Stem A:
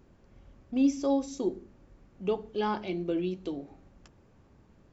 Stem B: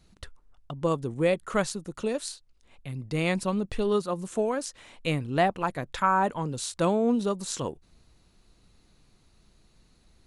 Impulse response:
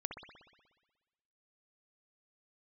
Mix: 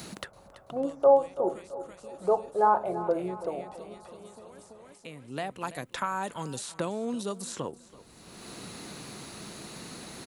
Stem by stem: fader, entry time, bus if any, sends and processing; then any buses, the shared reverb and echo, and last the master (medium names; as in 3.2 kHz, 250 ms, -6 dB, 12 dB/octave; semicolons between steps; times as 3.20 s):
-0.5 dB, 0.00 s, no send, echo send -14.5 dB, FFT filter 160 Hz 0 dB, 270 Hz -10 dB, 610 Hz +15 dB, 1.4 kHz +7 dB, 2.9 kHz -26 dB
-6.0 dB, 0.00 s, no send, echo send -19.5 dB, treble shelf 7.4 kHz +12 dB; three bands compressed up and down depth 100%; auto duck -19 dB, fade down 1.05 s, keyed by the first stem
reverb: none
echo: feedback delay 333 ms, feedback 47%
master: high-pass 130 Hz 6 dB/octave